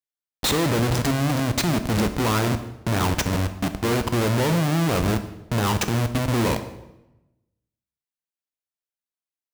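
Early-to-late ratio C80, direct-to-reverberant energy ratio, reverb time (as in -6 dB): 14.0 dB, 9.0 dB, 0.95 s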